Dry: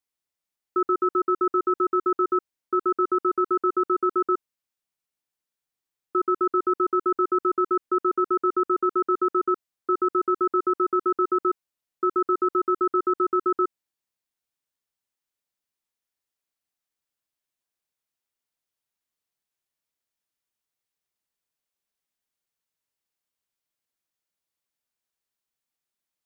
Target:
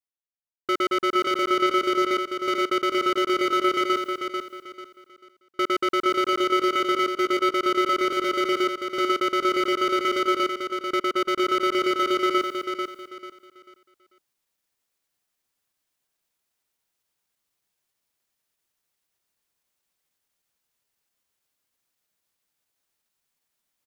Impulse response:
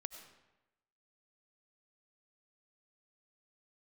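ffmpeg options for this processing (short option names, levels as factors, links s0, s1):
-af "asoftclip=type=hard:threshold=0.0531,areverse,acompressor=mode=upward:threshold=0.00501:ratio=2.5,areverse,atempo=1.1,agate=range=0.0224:threshold=0.00251:ratio=3:detection=peak,aecho=1:1:442|884|1326|1768:0.501|0.145|0.0421|0.0122,volume=1.88"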